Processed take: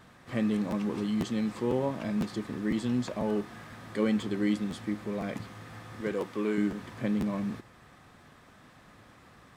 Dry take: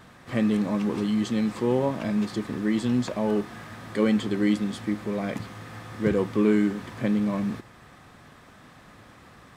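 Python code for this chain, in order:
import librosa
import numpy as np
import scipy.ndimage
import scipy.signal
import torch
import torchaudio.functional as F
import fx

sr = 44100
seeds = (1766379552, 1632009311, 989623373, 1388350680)

y = fx.highpass(x, sr, hz=400.0, slope=6, at=(6.01, 6.58))
y = fx.buffer_crackle(y, sr, first_s=0.7, period_s=0.5, block=512, kind='repeat')
y = y * 10.0 ** (-5.0 / 20.0)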